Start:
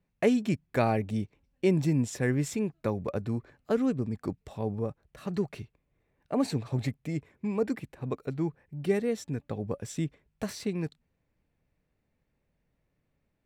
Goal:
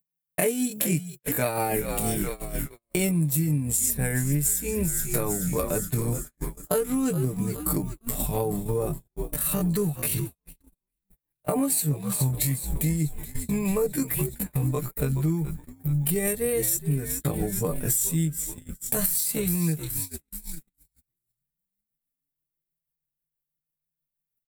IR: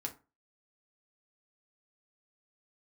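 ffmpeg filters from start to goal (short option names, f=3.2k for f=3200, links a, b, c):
-filter_complex "[0:a]aecho=1:1:6.7:0.65,acompressor=mode=upward:threshold=-46dB:ratio=2.5,crystalizer=i=2.5:c=0,atempo=0.55,asplit=8[a][b][c][d][e][f][g][h];[b]adelay=423,afreqshift=-73,volume=-13dB[i];[c]adelay=846,afreqshift=-146,volume=-16.9dB[j];[d]adelay=1269,afreqshift=-219,volume=-20.8dB[k];[e]adelay=1692,afreqshift=-292,volume=-24.6dB[l];[f]adelay=2115,afreqshift=-365,volume=-28.5dB[m];[g]adelay=2538,afreqshift=-438,volume=-32.4dB[n];[h]adelay=2961,afreqshift=-511,volume=-36.3dB[o];[a][i][j][k][l][m][n][o]amix=inputs=8:normalize=0,tremolo=f=6.2:d=0.37,lowshelf=f=120:t=q:w=3:g=-7.5,aexciter=amount=9.2:drive=3.9:freq=8.2k,asubboost=boost=5:cutoff=87,agate=range=-49dB:threshold=-38dB:ratio=16:detection=peak,acompressor=threshold=-32dB:ratio=8,alimiter=level_in=17dB:limit=-1dB:release=50:level=0:latency=1,volume=-7dB"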